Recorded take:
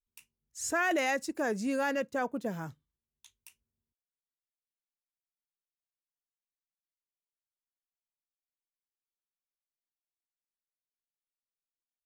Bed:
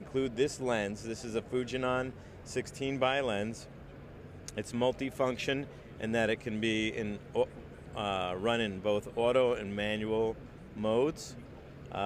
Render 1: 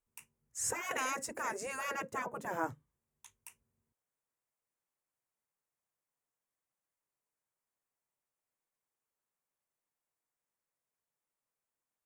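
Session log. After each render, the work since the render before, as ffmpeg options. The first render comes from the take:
-af "afftfilt=real='re*lt(hypot(re,im),0.0631)':imag='im*lt(hypot(re,im),0.0631)':win_size=1024:overlap=0.75,equalizer=f=125:t=o:w=1:g=9,equalizer=f=250:t=o:w=1:g=3,equalizer=f=500:t=o:w=1:g=8,equalizer=f=1000:t=o:w=1:g=8,equalizer=f=2000:t=o:w=1:g=5,equalizer=f=4000:t=o:w=1:g=-10,equalizer=f=8000:t=o:w=1:g=6"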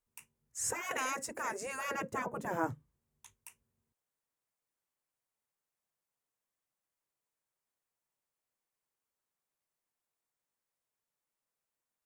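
-filter_complex "[0:a]asettb=1/sr,asplit=3[s0][s1][s2];[s0]atrim=end=1.904[s3];[s1]atrim=start=1.9:end=3.34,asetpts=PTS-STARTPTS,afade=t=in:d=0.004:c=qsin,afade=t=out:st=1.436:d=0.004:c=qsin,lowshelf=f=380:g=7[s4];[s2]atrim=start=3.336[s5];[s3][s4]acrossfade=d=0.004:c1=hsin:c2=qsin[s6];[s6][s5]acrossfade=d=0.004:c1=qsin:c2=hsin"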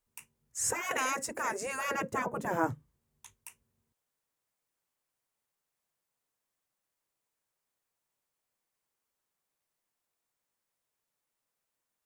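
-af "volume=1.58"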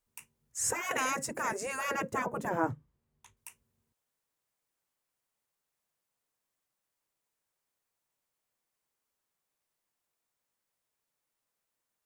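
-filter_complex "[0:a]asettb=1/sr,asplit=3[s0][s1][s2];[s0]atrim=end=0.944[s3];[s1]atrim=start=0.94:end=1.53,asetpts=PTS-STARTPTS,afade=t=in:d=0.004:c=qsin,afade=t=out:st=0.586:d=0.004:c=qsin,equalizer=f=150:t=o:w=0.77:g=11.5[s4];[s2]atrim=start=1.526[s5];[s3][s4]acrossfade=d=0.004:c1=hsin:c2=qsin[s6];[s6][s5]acrossfade=d=0.004:c1=qsin:c2=hsin,asettb=1/sr,asplit=3[s7][s8][s9];[s7]atrim=end=2.494[s10];[s8]atrim=start=2.49:end=3.37,asetpts=PTS-STARTPTS,afade=t=in:d=0.004:c=qsin,afade=t=out:st=0.876:d=0.004:c=qsin,highshelf=f=3700:g=-9.5[s11];[s9]atrim=start=3.366[s12];[s10][s11]acrossfade=d=0.004:c1=hsin:c2=qsin[s13];[s13][s12]acrossfade=d=0.004:c1=qsin:c2=hsin"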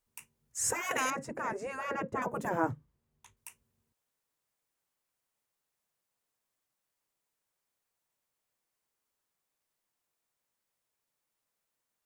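-filter_complex "[0:a]asettb=1/sr,asplit=3[s0][s1][s2];[s0]atrim=end=1.104[s3];[s1]atrim=start=1.1:end=2.22,asetpts=PTS-STARTPTS,afade=t=in:d=0.004:c=qsin,afade=t=out:st=1.116:d=0.004:c=qsin,lowpass=f=1400:p=1[s4];[s2]atrim=start=2.216[s5];[s3][s4]acrossfade=d=0.004:c1=hsin:c2=qsin[s6];[s6][s5]acrossfade=d=0.004:c1=qsin:c2=hsin"

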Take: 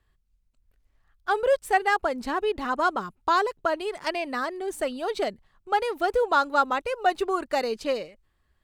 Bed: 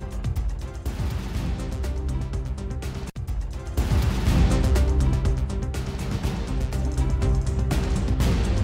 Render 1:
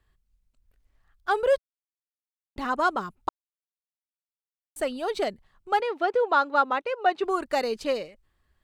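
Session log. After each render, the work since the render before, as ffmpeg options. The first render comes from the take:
-filter_complex "[0:a]asettb=1/sr,asplit=3[s0][s1][s2];[s0]atrim=end=5.804[s3];[s1]atrim=start=5.8:end=7.24,asetpts=PTS-STARTPTS,afade=t=in:d=0.004:c=qsin,afade=t=out:st=1.436:d=0.004:c=qsin,highpass=240,lowpass=3800[s4];[s2]atrim=start=7.236[s5];[s3][s4]acrossfade=d=0.004:c1=hsin:c2=qsin[s6];[s6][s5]acrossfade=d=0.004:c1=qsin:c2=hsin,asplit=5[s7][s8][s9][s10][s11];[s7]atrim=end=1.58,asetpts=PTS-STARTPTS,afade=t=out:st=1.576:d=0.004:c=hsin[s12];[s8]atrim=start=1.58:end=2.56,asetpts=PTS-STARTPTS,volume=0[s13];[s9]atrim=start=2.56:end=3.29,asetpts=PTS-STARTPTS,afade=t=in:d=0.004:c=hsin,afade=t=out:st=0.726:d=0.004:c=hsin[s14];[s10]atrim=start=3.29:end=4.76,asetpts=PTS-STARTPTS,volume=0[s15];[s11]atrim=start=4.76,asetpts=PTS-STARTPTS,afade=t=in:d=0.004:c=hsin[s16];[s12][s13][s14][s15][s16]concat=n=5:v=0:a=1"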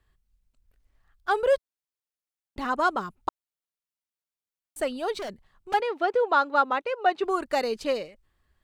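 -filter_complex "[0:a]asettb=1/sr,asplit=3[s0][s1][s2];[s0]atrim=end=5.194[s3];[s1]atrim=start=5.19:end=5.74,asetpts=PTS-STARTPTS,afade=t=in:d=0.004:c=qsin,afade=t=out:st=0.546:d=0.004:c=qsin,volume=39.8,asoftclip=hard,volume=0.0251[s4];[s2]atrim=start=5.736[s5];[s3][s4]acrossfade=d=0.004:c1=hsin:c2=qsin[s6];[s6][s5]acrossfade=d=0.004:c1=qsin:c2=hsin"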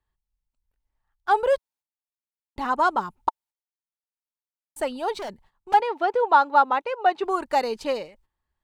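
-af "agate=range=0.251:threshold=0.00158:ratio=16:detection=peak,equalizer=f=890:w=4.8:g=11.5"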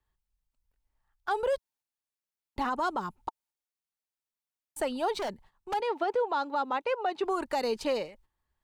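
-filter_complex "[0:a]acrossover=split=410|3000[s0][s1][s2];[s1]acompressor=threshold=0.0631:ratio=6[s3];[s0][s3][s2]amix=inputs=3:normalize=0,alimiter=limit=0.0891:level=0:latency=1:release=69"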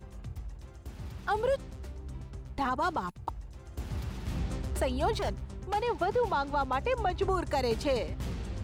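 -filter_complex "[1:a]volume=0.188[s0];[0:a][s0]amix=inputs=2:normalize=0"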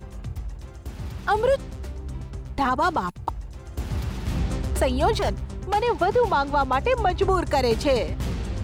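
-af "volume=2.51"

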